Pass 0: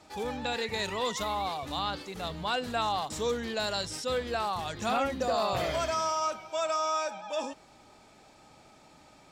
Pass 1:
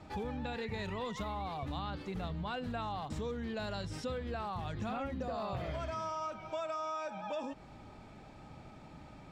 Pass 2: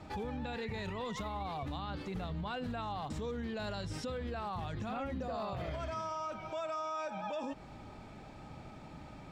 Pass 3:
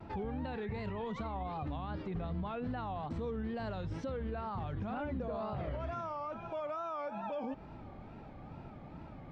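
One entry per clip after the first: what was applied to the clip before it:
tone controls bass +11 dB, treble -12 dB; compression 6:1, threshold -37 dBFS, peak gain reduction 13.5 dB; trim +1 dB
peak limiter -33.5 dBFS, peak gain reduction 6.5 dB; trim +2.5 dB
tape spacing loss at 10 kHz 30 dB; wow and flutter 130 cents; trim +2 dB

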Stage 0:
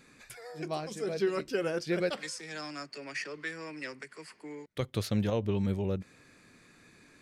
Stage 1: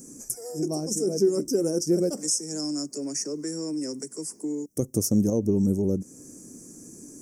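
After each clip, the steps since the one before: FFT filter 110 Hz 0 dB, 290 Hz +11 dB, 1.7 kHz -20 dB, 3.9 kHz -30 dB, 5.6 kHz +15 dB; in parallel at +2.5 dB: compression, threshold -37 dBFS, peak gain reduction 17.5 dB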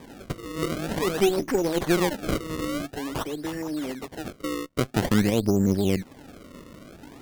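decimation with a swept rate 31×, swing 160% 0.49 Hz; Chebyshev shaper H 4 -16 dB, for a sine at -11 dBFS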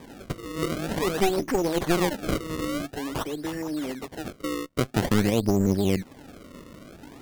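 one-sided wavefolder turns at -23.5 dBFS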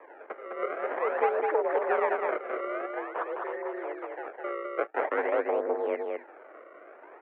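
delay 207 ms -3.5 dB; mistuned SSB +59 Hz 400–2000 Hz

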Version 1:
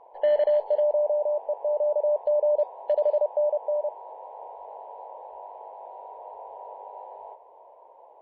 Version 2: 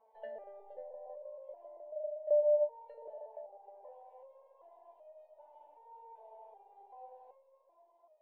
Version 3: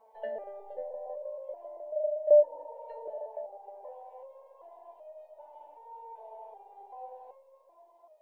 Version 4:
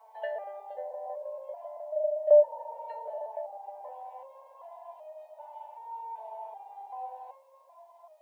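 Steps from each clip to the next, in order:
low-pass that closes with the level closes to 790 Hz, closed at -20 dBFS; Schroeder reverb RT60 2.2 s, combs from 26 ms, DRR 12.5 dB; resonator arpeggio 2.6 Hz 220–620 Hz
spectral replace 2.45–3.00 s, 480–1200 Hz after; dynamic bell 310 Hz, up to +6 dB, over -53 dBFS, Q 1.3; trim +7.5 dB
high-pass 690 Hz 24 dB/octave; trim +7.5 dB

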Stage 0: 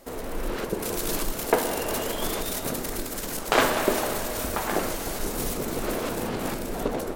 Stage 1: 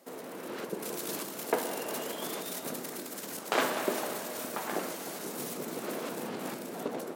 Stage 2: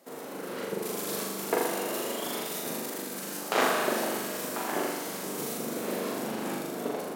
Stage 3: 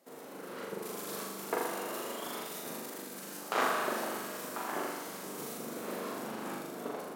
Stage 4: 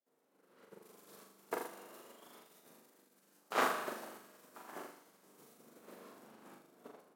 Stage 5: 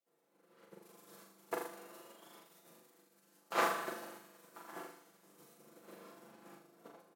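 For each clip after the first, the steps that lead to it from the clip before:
high-pass 160 Hz 24 dB/octave; trim -7.5 dB
flutter echo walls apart 7 m, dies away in 1 s
dynamic bell 1.2 kHz, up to +6 dB, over -45 dBFS, Q 1.5; trim -7.5 dB
upward expansion 2.5:1, over -47 dBFS
comb 5.9 ms; trim -1.5 dB

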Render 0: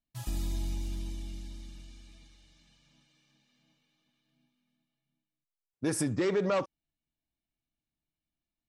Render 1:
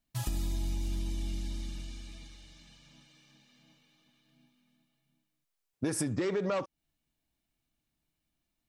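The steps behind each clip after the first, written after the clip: compression 4:1, threshold -38 dBFS, peak gain reduction 11.5 dB; trim +7.5 dB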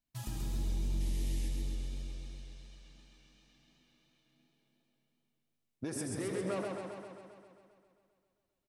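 frequency-shifting echo 82 ms, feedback 58%, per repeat +93 Hz, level -12 dB; painted sound noise, 1.00–1.49 s, 1.7–12 kHz -47 dBFS; modulated delay 133 ms, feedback 67%, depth 72 cents, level -4 dB; trim -7.5 dB

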